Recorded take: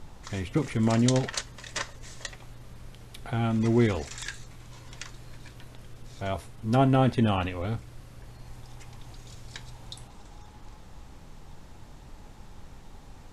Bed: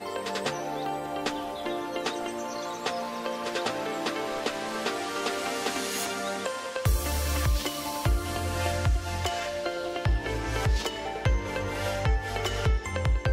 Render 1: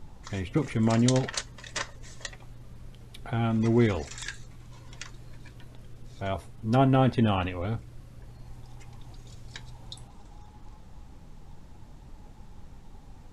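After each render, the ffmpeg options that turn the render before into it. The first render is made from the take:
-af "afftdn=nr=6:nf=-49"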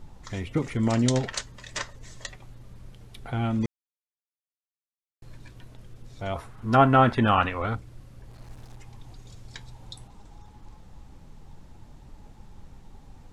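-filter_complex "[0:a]asettb=1/sr,asplit=3[s0][s1][s2];[s0]atrim=end=6.364[s3];[s1]atrim=start=6.36:end=7.75,asetpts=PTS-STARTPTS,afade=t=in:d=0.004:c=qsin,afade=t=out:st=1.386:d=0.004:c=qsin,equalizer=f=1300:w=1:g=13[s4];[s2]atrim=start=7.746[s5];[s3][s4]acrossfade=d=0.004:c1=hsin:c2=qsin[s6];[s6][s5]acrossfade=d=0.004:c1=qsin:c2=hsin,asettb=1/sr,asplit=3[s7][s8][s9];[s7]atrim=end=8.314[s10];[s8]atrim=start=8.31:end=8.77,asetpts=PTS-STARTPTS,afade=t=in:d=0.004:c=qsin,afade=t=out:st=0.456:d=0.004:c=qsin,acrusher=bits=7:mix=0:aa=0.5[s11];[s9]atrim=start=8.766[s12];[s10][s11]acrossfade=d=0.004:c1=hsin:c2=qsin[s13];[s13][s12]acrossfade=d=0.004:c1=qsin:c2=hsin,asplit=3[s14][s15][s16];[s14]atrim=end=3.66,asetpts=PTS-STARTPTS,afade=t=out:st=3.656:d=0.004:c=hsin[s17];[s15]atrim=start=3.66:end=5.22,asetpts=PTS-STARTPTS,volume=0[s18];[s16]atrim=start=5.22,asetpts=PTS-STARTPTS,afade=t=in:d=0.004:c=hsin[s19];[s17][s18][s19]concat=n=3:v=0:a=1"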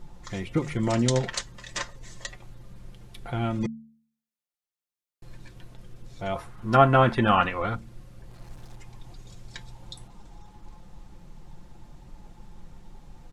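-af "aecho=1:1:5.7:0.42,bandreject=f=74.75:t=h:w=4,bandreject=f=149.5:t=h:w=4,bandreject=f=224.25:t=h:w=4"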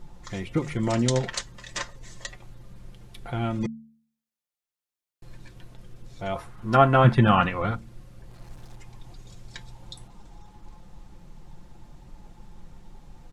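-filter_complex "[0:a]asettb=1/sr,asplit=3[s0][s1][s2];[s0]atrim=end=7.044[s3];[s1]atrim=start=7.04:end=7.71,asetpts=PTS-STARTPTS,afade=t=in:d=0.004:c=qsin,afade=t=out:st=0.666:d=0.004:c=qsin,equalizer=f=140:t=o:w=0.82:g=12[s4];[s2]atrim=start=7.706[s5];[s3][s4]acrossfade=d=0.004:c1=hsin:c2=qsin[s6];[s6][s5]acrossfade=d=0.004:c1=qsin:c2=hsin"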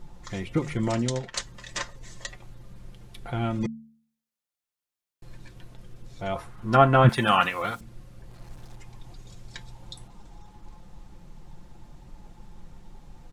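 -filter_complex "[0:a]asettb=1/sr,asplit=3[s0][s1][s2];[s0]atrim=end=7.094[s3];[s1]atrim=start=7.09:end=7.81,asetpts=PTS-STARTPTS,afade=t=in:d=0.004:c=qsin,afade=t=out:st=0.716:d=0.004:c=qsin,aemphasis=mode=production:type=riaa[s4];[s2]atrim=start=7.806[s5];[s3][s4]acrossfade=d=0.004:c1=hsin:c2=qsin[s6];[s6][s5]acrossfade=d=0.004:c1=qsin:c2=hsin,asplit=2[s7][s8];[s7]atrim=end=1.34,asetpts=PTS-STARTPTS,afade=t=out:st=0.8:d=0.54:silence=0.251189[s9];[s8]atrim=start=1.34,asetpts=PTS-STARTPTS,afade=t=in:d=0.004:c=hsin:silence=0.251189[s10];[s9][s10]concat=n=2:v=0:a=1"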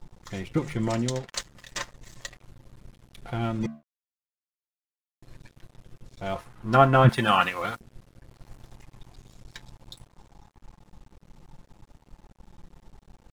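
-af "aeval=exprs='sgn(val(0))*max(abs(val(0))-0.00531,0)':c=same"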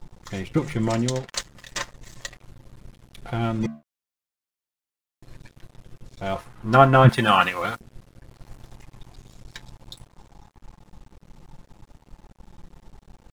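-af "volume=1.5"

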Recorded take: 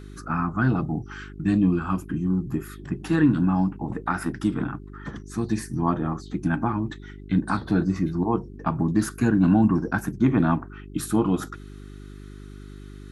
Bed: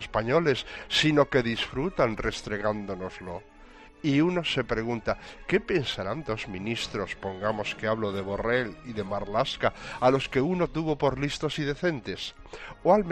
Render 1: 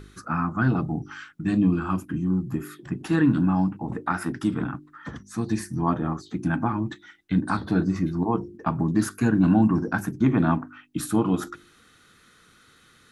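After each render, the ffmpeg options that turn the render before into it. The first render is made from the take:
-af "bandreject=f=50:t=h:w=4,bandreject=f=100:t=h:w=4,bandreject=f=150:t=h:w=4,bandreject=f=200:t=h:w=4,bandreject=f=250:t=h:w=4,bandreject=f=300:t=h:w=4,bandreject=f=350:t=h:w=4,bandreject=f=400:t=h:w=4"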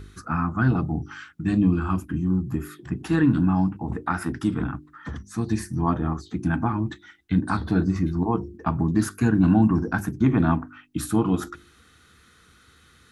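-af "equalizer=f=70:w=2.1:g=14,bandreject=f=570:w=12"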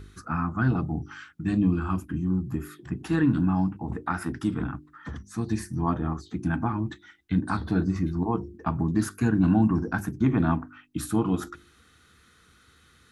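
-af "volume=0.708"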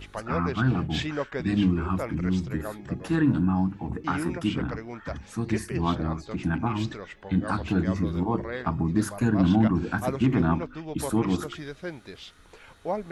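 -filter_complex "[1:a]volume=0.355[s0];[0:a][s0]amix=inputs=2:normalize=0"

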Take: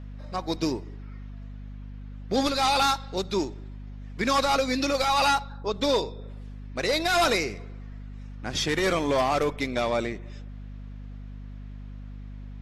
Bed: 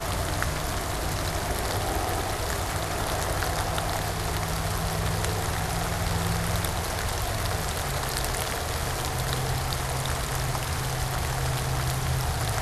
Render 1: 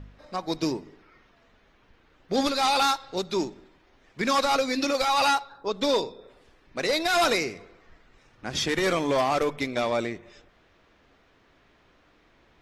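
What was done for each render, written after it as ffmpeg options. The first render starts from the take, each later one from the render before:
-af "bandreject=f=50:t=h:w=4,bandreject=f=100:t=h:w=4,bandreject=f=150:t=h:w=4,bandreject=f=200:t=h:w=4,bandreject=f=250:t=h:w=4"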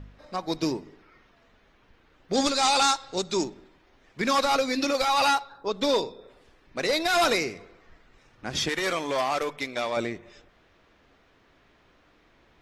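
-filter_complex "[0:a]asettb=1/sr,asplit=3[s0][s1][s2];[s0]atrim=end=2.334[s3];[s1]atrim=start=2.33:end=3.44,asetpts=PTS-STARTPTS,afade=t=in:d=0.004:c=qsin,afade=t=out:st=1.106:d=0.004:c=qsin,lowpass=f=7700:t=q:w=3.2[s4];[s2]atrim=start=3.436[s5];[s3][s4]acrossfade=d=0.004:c1=hsin:c2=qsin[s6];[s6][s5]acrossfade=d=0.004:c1=qsin:c2=hsin,asettb=1/sr,asplit=3[s7][s8][s9];[s7]atrim=end=8.694[s10];[s8]atrim=start=8.69:end=9.97,asetpts=PTS-STARTPTS,afade=t=in:d=0.004:c=qsin,afade=t=out:st=1.276:d=0.004:c=qsin,lowshelf=f=420:g=-10[s11];[s9]atrim=start=9.966[s12];[s10][s11]acrossfade=d=0.004:c1=hsin:c2=qsin[s13];[s13][s12]acrossfade=d=0.004:c1=qsin:c2=hsin"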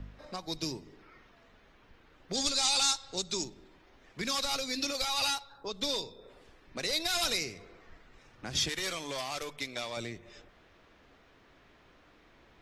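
-filter_complex "[0:a]acrossover=split=130|3000[s0][s1][s2];[s1]acompressor=threshold=0.00708:ratio=2.5[s3];[s0][s3][s2]amix=inputs=3:normalize=0"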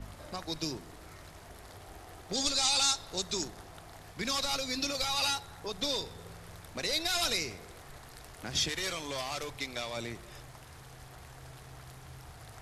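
-filter_complex "[1:a]volume=0.075[s0];[0:a][s0]amix=inputs=2:normalize=0"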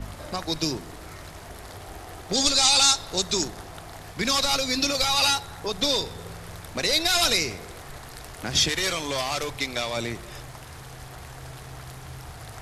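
-af "volume=2.82"

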